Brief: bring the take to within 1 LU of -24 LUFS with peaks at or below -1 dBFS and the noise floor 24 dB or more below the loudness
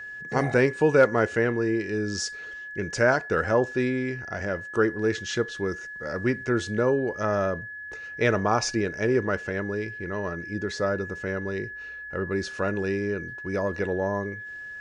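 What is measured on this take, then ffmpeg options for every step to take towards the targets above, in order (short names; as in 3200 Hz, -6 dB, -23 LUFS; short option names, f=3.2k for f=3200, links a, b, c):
steady tone 1700 Hz; tone level -36 dBFS; loudness -26.5 LUFS; peak -9.0 dBFS; loudness target -24.0 LUFS
-> -af "bandreject=f=1.7k:w=30"
-af "volume=2.5dB"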